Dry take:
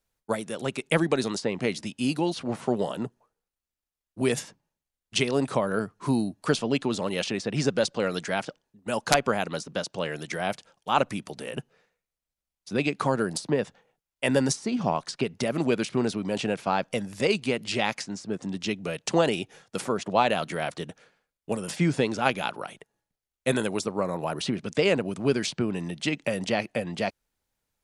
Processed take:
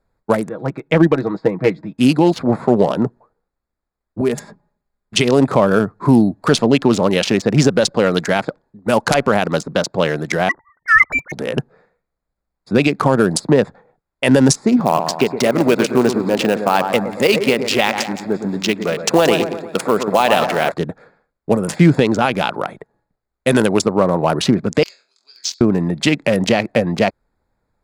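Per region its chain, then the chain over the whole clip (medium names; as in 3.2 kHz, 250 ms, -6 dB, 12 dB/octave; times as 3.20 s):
0.49–1.98 s: low-pass 2.7 kHz + comb 6.3 ms, depth 67% + upward expansion, over -33 dBFS
4.21–5.17 s: compression 1.5:1, threshold -44 dBFS + comb 4.9 ms, depth 51%
10.49–11.32 s: formants replaced by sine waves + frequency inversion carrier 2.6 kHz
14.80–20.72 s: high-pass 300 Hz 6 dB/octave + short-mantissa float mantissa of 2-bit + two-band feedback delay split 2.4 kHz, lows 116 ms, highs 177 ms, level -9 dB
24.83–25.61 s: Butterworth band-pass 5.3 kHz, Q 2.4 + flutter echo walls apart 3.9 m, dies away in 0.32 s
whole clip: local Wiener filter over 15 samples; loudness maximiser +15.5 dB; trim -1 dB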